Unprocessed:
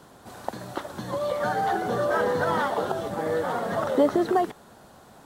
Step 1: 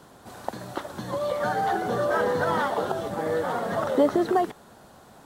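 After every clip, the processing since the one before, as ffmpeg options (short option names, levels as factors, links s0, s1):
-af anull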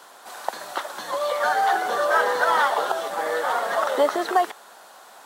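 -af "highpass=780,volume=2.51"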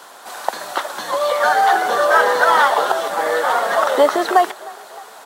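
-filter_complex "[0:a]asplit=6[s0][s1][s2][s3][s4][s5];[s1]adelay=307,afreqshift=32,volume=0.0794[s6];[s2]adelay=614,afreqshift=64,volume=0.049[s7];[s3]adelay=921,afreqshift=96,volume=0.0305[s8];[s4]adelay=1228,afreqshift=128,volume=0.0188[s9];[s5]adelay=1535,afreqshift=160,volume=0.0117[s10];[s0][s6][s7][s8][s9][s10]amix=inputs=6:normalize=0,volume=2.11"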